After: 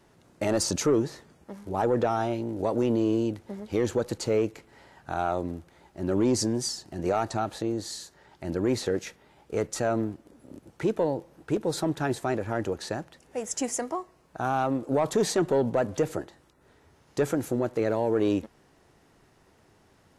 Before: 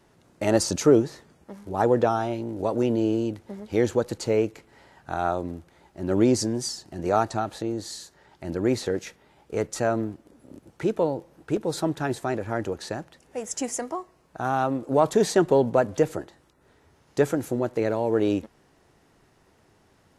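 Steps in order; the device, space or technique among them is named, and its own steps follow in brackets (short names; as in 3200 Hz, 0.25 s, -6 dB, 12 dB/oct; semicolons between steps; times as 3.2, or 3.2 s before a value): soft clipper into limiter (soft clip -11 dBFS, distortion -19 dB; limiter -16 dBFS, peak gain reduction 4.5 dB)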